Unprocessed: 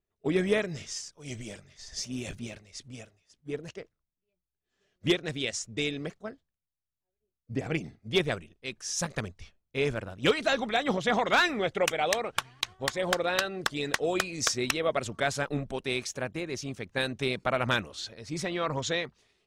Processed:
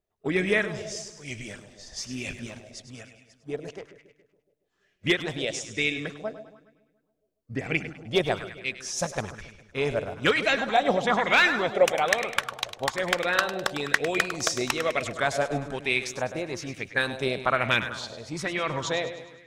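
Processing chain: split-band echo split 720 Hz, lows 0.14 s, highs 0.102 s, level -11 dB; LFO bell 1.1 Hz 600–2400 Hz +10 dB

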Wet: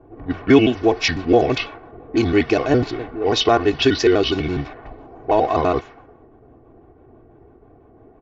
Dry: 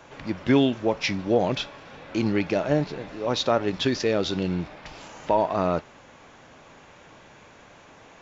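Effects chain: trilling pitch shifter -3.5 st, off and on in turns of 83 ms; low-pass opened by the level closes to 360 Hz, open at -22 dBFS; comb 2.7 ms, depth 70%; gain +6 dB

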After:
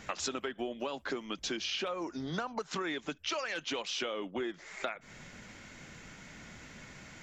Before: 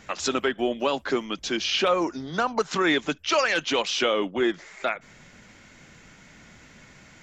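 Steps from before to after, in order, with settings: compressor 10:1, threshold -33 dBFS, peak gain reduction 16 dB

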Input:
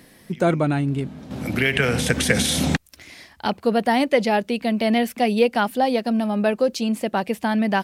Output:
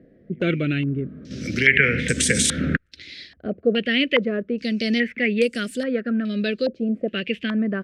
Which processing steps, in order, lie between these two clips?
Chebyshev band-stop 460–1700 Hz, order 2; stepped low-pass 2.4 Hz 740–8000 Hz; gain -1 dB

